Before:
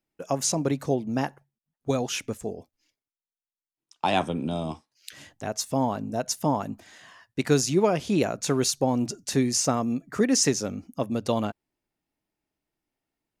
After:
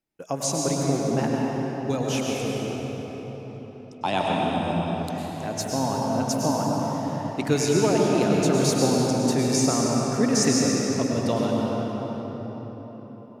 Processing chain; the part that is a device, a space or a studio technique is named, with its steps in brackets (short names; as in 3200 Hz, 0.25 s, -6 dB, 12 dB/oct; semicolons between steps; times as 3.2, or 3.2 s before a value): cathedral (reverb RT60 4.8 s, pre-delay 95 ms, DRR -3 dB); gain -2 dB